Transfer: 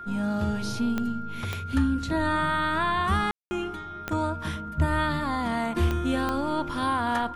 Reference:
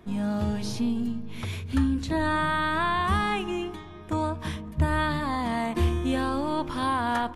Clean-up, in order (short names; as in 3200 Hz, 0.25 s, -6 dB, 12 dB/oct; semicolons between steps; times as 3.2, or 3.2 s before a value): de-click; notch 1400 Hz, Q 30; room tone fill 3.31–3.51